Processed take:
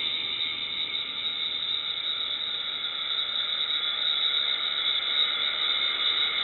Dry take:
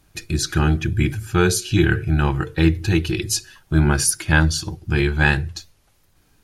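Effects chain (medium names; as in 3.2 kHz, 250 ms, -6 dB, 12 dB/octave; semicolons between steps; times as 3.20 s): Paulstretch 15×, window 1.00 s, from 4.61 s; frequency inversion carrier 3.8 kHz; trim -7.5 dB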